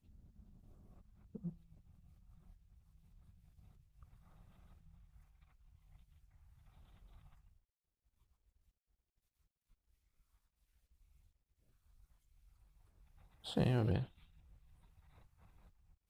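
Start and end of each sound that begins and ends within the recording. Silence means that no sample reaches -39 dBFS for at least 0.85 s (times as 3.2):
1.35–1.49
13.47–14.04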